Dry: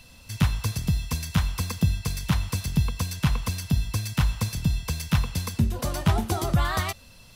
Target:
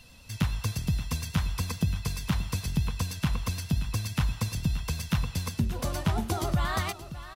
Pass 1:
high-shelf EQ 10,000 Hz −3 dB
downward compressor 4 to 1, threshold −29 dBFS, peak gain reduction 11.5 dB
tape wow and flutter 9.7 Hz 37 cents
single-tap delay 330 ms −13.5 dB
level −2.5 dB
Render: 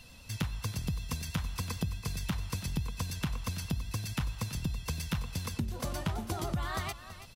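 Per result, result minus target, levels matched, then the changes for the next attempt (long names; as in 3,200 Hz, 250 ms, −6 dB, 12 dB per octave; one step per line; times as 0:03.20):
echo 247 ms early; downward compressor: peak gain reduction +7.5 dB
change: single-tap delay 577 ms −13.5 dB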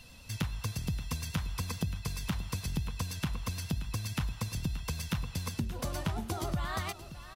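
downward compressor: peak gain reduction +7.5 dB
change: downward compressor 4 to 1, threshold −19 dBFS, peak gain reduction 4 dB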